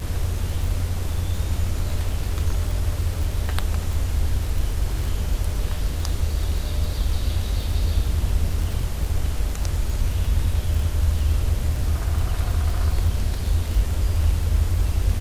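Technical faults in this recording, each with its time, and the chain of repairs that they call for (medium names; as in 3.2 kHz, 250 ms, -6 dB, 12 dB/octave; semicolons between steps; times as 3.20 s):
crackle 31 per s -27 dBFS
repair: de-click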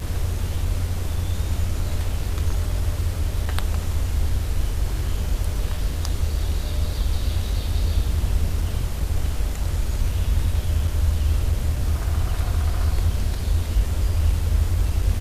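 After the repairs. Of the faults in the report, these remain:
nothing left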